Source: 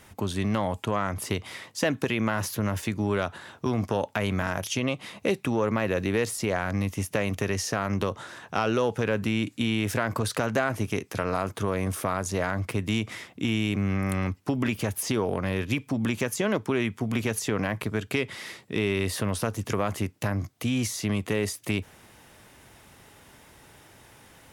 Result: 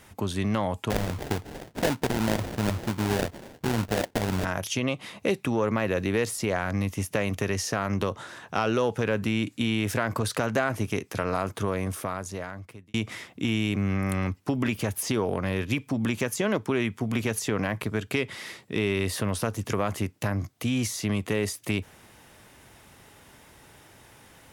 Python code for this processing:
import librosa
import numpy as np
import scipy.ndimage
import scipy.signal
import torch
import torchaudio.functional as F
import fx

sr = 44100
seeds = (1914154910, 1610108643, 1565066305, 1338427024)

y = fx.sample_hold(x, sr, seeds[0], rate_hz=1200.0, jitter_pct=20, at=(0.9, 4.45))
y = fx.edit(y, sr, fx.fade_out_span(start_s=11.63, length_s=1.31), tone=tone)